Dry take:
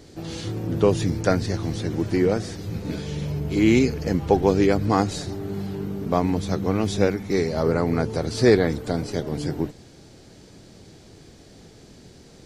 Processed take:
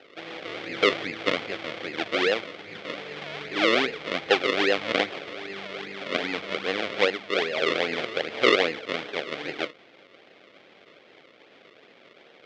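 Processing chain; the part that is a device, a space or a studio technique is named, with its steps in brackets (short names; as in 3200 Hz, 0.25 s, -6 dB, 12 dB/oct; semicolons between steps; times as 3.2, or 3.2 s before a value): circuit-bent sampling toy (decimation with a swept rate 38×, swing 100% 2.5 Hz; speaker cabinet 480–4700 Hz, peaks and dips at 520 Hz +4 dB, 960 Hz -7 dB, 2200 Hz +8 dB, 3300 Hz +7 dB); gain -1 dB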